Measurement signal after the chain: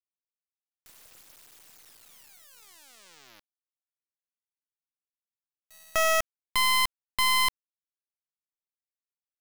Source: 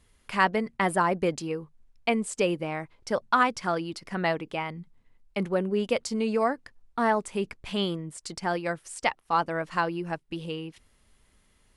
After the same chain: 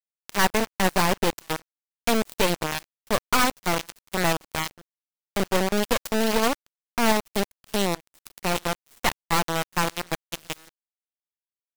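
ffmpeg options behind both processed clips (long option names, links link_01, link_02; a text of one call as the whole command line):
ffmpeg -i in.wav -af "aeval=exprs='0.376*(cos(1*acos(clip(val(0)/0.376,-1,1)))-cos(1*PI/2))+0.133*(cos(8*acos(clip(val(0)/0.376,-1,1)))-cos(8*PI/2))':channel_layout=same,acrusher=bits=4:dc=4:mix=0:aa=0.000001,volume=-3dB" out.wav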